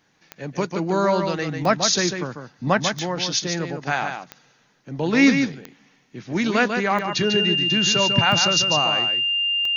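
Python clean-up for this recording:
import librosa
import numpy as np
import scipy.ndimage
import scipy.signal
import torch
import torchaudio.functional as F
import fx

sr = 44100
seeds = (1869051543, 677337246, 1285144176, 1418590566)

y = fx.fix_declick_ar(x, sr, threshold=10.0)
y = fx.notch(y, sr, hz=2800.0, q=30.0)
y = fx.fix_echo_inverse(y, sr, delay_ms=146, level_db=-6.5)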